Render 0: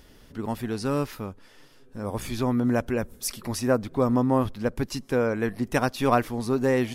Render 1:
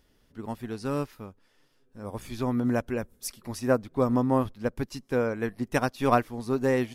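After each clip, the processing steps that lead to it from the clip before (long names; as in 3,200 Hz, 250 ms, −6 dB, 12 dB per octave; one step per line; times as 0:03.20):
expander for the loud parts 1.5 to 1, over −43 dBFS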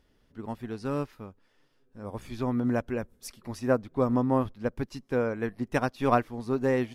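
high-shelf EQ 5,600 Hz −9 dB
level −1 dB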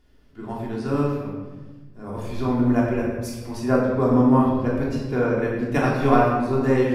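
convolution reverb RT60 1.3 s, pre-delay 3 ms, DRR −5.5 dB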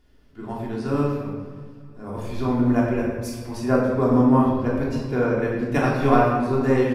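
repeating echo 298 ms, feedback 56%, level −20.5 dB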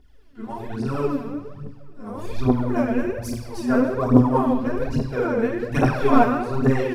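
phase shifter 1.2 Hz, delay 4.6 ms, feedback 71%
level −3 dB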